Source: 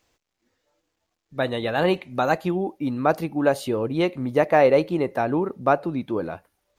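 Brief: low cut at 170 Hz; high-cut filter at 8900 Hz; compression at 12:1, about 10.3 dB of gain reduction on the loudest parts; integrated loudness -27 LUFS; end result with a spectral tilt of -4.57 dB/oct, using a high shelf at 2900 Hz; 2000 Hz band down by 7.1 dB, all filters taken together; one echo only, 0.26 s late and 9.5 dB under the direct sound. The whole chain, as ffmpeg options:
-af "highpass=170,lowpass=8.9k,equalizer=f=2k:t=o:g=-7.5,highshelf=f=2.9k:g=-6,acompressor=threshold=-23dB:ratio=12,aecho=1:1:260:0.335,volume=2dB"

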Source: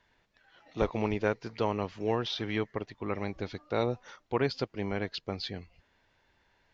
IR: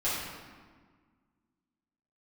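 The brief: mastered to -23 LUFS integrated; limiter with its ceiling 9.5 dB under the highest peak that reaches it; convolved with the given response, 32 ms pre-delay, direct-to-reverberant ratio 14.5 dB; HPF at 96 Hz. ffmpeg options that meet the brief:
-filter_complex "[0:a]highpass=96,alimiter=limit=-22.5dB:level=0:latency=1,asplit=2[a][b];[1:a]atrim=start_sample=2205,adelay=32[c];[b][c]afir=irnorm=-1:irlink=0,volume=-23.5dB[d];[a][d]amix=inputs=2:normalize=0,volume=14dB"

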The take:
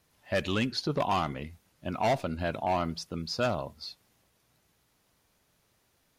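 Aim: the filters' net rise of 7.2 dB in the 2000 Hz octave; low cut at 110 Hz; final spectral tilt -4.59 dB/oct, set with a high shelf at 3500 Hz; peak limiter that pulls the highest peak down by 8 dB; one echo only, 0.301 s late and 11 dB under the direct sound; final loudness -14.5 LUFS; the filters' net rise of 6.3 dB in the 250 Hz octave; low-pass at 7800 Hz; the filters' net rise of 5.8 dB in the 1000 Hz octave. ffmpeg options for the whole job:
-af "highpass=110,lowpass=7.8k,equalizer=f=250:t=o:g=7.5,equalizer=f=1k:t=o:g=5.5,equalizer=f=2k:t=o:g=5,highshelf=f=3.5k:g=8.5,alimiter=limit=-18dB:level=0:latency=1,aecho=1:1:301:0.282,volume=15.5dB"

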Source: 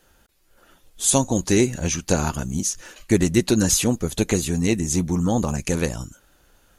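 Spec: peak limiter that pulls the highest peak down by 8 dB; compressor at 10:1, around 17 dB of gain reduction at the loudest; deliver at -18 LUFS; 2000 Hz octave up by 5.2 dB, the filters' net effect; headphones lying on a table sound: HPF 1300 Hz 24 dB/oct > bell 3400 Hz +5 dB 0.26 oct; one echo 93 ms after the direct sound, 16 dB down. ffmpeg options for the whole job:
-af "equalizer=f=2k:t=o:g=6.5,acompressor=threshold=-30dB:ratio=10,alimiter=limit=-24dB:level=0:latency=1,highpass=f=1.3k:w=0.5412,highpass=f=1.3k:w=1.3066,equalizer=f=3.4k:t=o:w=0.26:g=5,aecho=1:1:93:0.158,volume=21dB"

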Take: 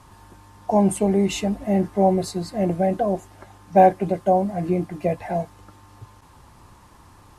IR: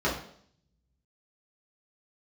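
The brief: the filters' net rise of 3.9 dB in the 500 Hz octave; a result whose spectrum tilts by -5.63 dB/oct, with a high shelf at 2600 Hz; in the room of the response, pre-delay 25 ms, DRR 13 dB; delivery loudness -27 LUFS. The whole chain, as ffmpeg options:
-filter_complex "[0:a]equalizer=f=500:t=o:g=4.5,highshelf=f=2.6k:g=8.5,asplit=2[a][b];[1:a]atrim=start_sample=2205,adelay=25[c];[b][c]afir=irnorm=-1:irlink=0,volume=-25.5dB[d];[a][d]amix=inputs=2:normalize=0,volume=-8.5dB"

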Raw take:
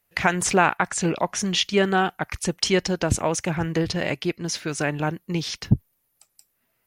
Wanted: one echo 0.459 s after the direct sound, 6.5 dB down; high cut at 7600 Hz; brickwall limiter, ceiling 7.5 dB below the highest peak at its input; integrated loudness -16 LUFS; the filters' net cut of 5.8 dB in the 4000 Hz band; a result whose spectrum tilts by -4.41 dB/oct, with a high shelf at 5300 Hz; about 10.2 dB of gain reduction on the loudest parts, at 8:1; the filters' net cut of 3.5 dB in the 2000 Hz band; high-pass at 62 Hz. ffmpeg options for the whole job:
-af "highpass=62,lowpass=7.6k,equalizer=f=2k:t=o:g=-3.5,equalizer=f=4k:t=o:g=-8,highshelf=f=5.3k:g=3,acompressor=threshold=-23dB:ratio=8,alimiter=limit=-19.5dB:level=0:latency=1,aecho=1:1:459:0.473,volume=14dB"

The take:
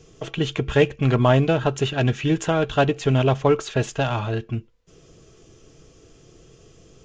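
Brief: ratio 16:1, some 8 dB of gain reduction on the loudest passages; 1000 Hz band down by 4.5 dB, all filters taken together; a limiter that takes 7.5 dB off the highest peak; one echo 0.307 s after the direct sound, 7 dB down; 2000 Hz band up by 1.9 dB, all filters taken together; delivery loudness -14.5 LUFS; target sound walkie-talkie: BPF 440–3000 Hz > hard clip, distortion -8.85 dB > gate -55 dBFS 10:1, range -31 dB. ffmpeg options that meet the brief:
-af "equalizer=f=1k:t=o:g=-8,equalizer=f=2k:t=o:g=6.5,acompressor=threshold=-20dB:ratio=16,alimiter=limit=-17dB:level=0:latency=1,highpass=440,lowpass=3k,aecho=1:1:307:0.447,asoftclip=type=hard:threshold=-31dB,agate=range=-31dB:threshold=-55dB:ratio=10,volume=21dB"

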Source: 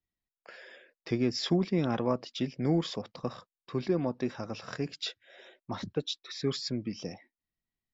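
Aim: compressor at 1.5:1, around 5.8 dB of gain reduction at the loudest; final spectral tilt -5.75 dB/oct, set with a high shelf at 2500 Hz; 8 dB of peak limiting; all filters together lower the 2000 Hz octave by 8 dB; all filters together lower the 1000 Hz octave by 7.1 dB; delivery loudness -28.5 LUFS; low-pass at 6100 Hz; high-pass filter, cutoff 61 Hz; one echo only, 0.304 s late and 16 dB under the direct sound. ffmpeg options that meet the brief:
-af "highpass=61,lowpass=6.1k,equalizer=f=1k:t=o:g=-7.5,equalizer=f=2k:t=o:g=-4.5,highshelf=f=2.5k:g=-7,acompressor=threshold=-39dB:ratio=1.5,alimiter=level_in=6.5dB:limit=-24dB:level=0:latency=1,volume=-6.5dB,aecho=1:1:304:0.158,volume=14dB"

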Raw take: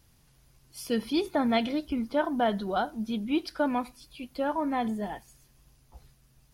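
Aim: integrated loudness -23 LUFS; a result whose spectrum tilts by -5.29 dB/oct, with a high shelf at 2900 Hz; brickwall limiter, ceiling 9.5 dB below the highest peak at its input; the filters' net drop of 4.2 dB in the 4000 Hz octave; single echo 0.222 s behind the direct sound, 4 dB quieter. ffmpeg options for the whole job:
-af "highshelf=f=2.9k:g=4,equalizer=f=4k:t=o:g=-9,alimiter=level_in=0.5dB:limit=-24dB:level=0:latency=1,volume=-0.5dB,aecho=1:1:222:0.631,volume=9.5dB"

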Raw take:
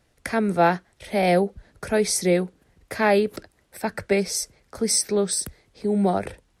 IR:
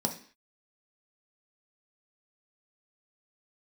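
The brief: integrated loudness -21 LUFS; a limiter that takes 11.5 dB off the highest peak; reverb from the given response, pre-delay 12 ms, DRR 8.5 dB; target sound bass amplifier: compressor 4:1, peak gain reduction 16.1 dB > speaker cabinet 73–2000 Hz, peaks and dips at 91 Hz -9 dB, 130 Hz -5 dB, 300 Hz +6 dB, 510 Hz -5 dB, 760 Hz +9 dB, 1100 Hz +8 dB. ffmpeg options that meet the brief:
-filter_complex "[0:a]alimiter=limit=-18.5dB:level=0:latency=1,asplit=2[a][b];[1:a]atrim=start_sample=2205,adelay=12[c];[b][c]afir=irnorm=-1:irlink=0,volume=-14.5dB[d];[a][d]amix=inputs=2:normalize=0,acompressor=threshold=-36dB:ratio=4,highpass=f=73:w=0.5412,highpass=f=73:w=1.3066,equalizer=f=91:t=q:w=4:g=-9,equalizer=f=130:t=q:w=4:g=-5,equalizer=f=300:t=q:w=4:g=6,equalizer=f=510:t=q:w=4:g=-5,equalizer=f=760:t=q:w=4:g=9,equalizer=f=1.1k:t=q:w=4:g=8,lowpass=f=2k:w=0.5412,lowpass=f=2k:w=1.3066,volume=17dB"

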